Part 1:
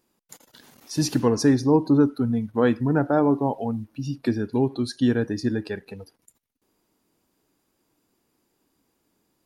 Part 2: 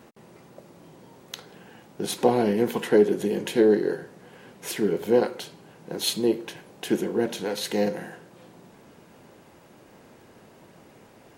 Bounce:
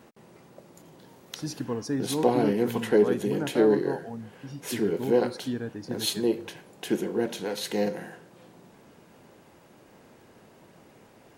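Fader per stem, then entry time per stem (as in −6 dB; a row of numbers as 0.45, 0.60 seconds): −11.0, −2.5 decibels; 0.45, 0.00 seconds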